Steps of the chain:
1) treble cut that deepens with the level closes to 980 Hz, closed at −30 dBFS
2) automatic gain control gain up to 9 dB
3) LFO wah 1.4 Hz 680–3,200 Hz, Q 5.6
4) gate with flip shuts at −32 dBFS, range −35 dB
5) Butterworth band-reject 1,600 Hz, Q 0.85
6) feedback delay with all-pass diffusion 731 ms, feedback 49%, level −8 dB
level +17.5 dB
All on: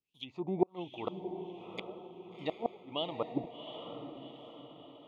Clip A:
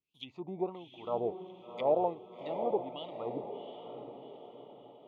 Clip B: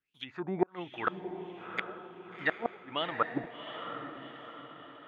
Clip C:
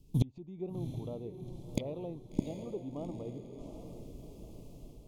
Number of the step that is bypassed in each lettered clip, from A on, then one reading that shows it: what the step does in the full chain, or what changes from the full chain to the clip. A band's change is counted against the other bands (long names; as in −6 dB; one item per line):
2, change in crest factor −5.5 dB
5, 2 kHz band +16.0 dB
3, 125 Hz band +20.5 dB